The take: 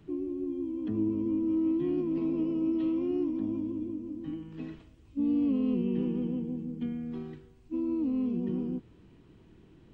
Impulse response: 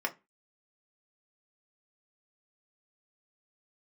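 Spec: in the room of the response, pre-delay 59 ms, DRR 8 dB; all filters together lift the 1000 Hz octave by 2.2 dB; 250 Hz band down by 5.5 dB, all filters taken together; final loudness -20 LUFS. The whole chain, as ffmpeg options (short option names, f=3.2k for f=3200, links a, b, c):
-filter_complex "[0:a]equalizer=f=250:t=o:g=-7.5,equalizer=f=1k:t=o:g=3,asplit=2[a][b];[1:a]atrim=start_sample=2205,adelay=59[c];[b][c]afir=irnorm=-1:irlink=0,volume=-14dB[d];[a][d]amix=inputs=2:normalize=0,volume=15.5dB"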